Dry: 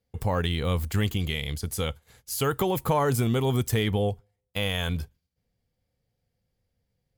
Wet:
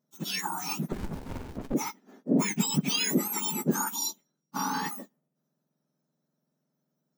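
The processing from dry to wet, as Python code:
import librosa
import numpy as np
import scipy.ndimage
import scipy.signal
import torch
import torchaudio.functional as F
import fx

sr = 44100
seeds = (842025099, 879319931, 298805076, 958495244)

y = fx.octave_mirror(x, sr, pivot_hz=1700.0)
y = fx.running_max(y, sr, window=65, at=(0.92, 1.74))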